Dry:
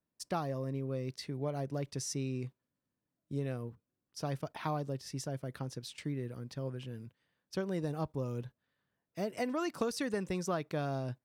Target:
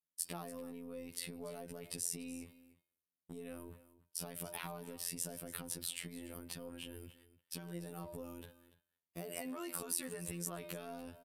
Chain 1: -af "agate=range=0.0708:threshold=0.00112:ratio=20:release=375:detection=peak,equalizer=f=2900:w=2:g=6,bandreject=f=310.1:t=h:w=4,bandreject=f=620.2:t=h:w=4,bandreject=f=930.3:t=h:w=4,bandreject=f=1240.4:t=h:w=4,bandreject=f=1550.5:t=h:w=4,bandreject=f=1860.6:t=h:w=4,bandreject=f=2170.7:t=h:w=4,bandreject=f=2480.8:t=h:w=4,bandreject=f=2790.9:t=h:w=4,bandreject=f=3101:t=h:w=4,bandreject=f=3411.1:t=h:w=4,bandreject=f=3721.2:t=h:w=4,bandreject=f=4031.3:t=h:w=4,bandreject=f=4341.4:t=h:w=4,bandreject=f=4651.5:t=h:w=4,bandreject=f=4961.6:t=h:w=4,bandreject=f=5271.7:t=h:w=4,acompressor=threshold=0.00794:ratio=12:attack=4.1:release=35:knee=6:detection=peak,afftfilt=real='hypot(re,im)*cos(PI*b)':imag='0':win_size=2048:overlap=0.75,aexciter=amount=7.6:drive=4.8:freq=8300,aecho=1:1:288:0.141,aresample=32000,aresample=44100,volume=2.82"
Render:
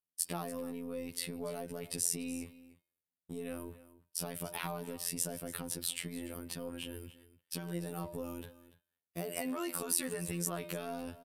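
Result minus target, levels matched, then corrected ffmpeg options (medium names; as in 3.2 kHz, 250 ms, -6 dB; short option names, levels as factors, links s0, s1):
compression: peak gain reduction -6.5 dB
-af "agate=range=0.0708:threshold=0.00112:ratio=20:release=375:detection=peak,equalizer=f=2900:w=2:g=6,bandreject=f=310.1:t=h:w=4,bandreject=f=620.2:t=h:w=4,bandreject=f=930.3:t=h:w=4,bandreject=f=1240.4:t=h:w=4,bandreject=f=1550.5:t=h:w=4,bandreject=f=1860.6:t=h:w=4,bandreject=f=2170.7:t=h:w=4,bandreject=f=2480.8:t=h:w=4,bandreject=f=2790.9:t=h:w=4,bandreject=f=3101:t=h:w=4,bandreject=f=3411.1:t=h:w=4,bandreject=f=3721.2:t=h:w=4,bandreject=f=4031.3:t=h:w=4,bandreject=f=4341.4:t=h:w=4,bandreject=f=4651.5:t=h:w=4,bandreject=f=4961.6:t=h:w=4,bandreject=f=5271.7:t=h:w=4,acompressor=threshold=0.00355:ratio=12:attack=4.1:release=35:knee=6:detection=peak,afftfilt=real='hypot(re,im)*cos(PI*b)':imag='0':win_size=2048:overlap=0.75,aexciter=amount=7.6:drive=4.8:freq=8300,aecho=1:1:288:0.141,aresample=32000,aresample=44100,volume=2.82"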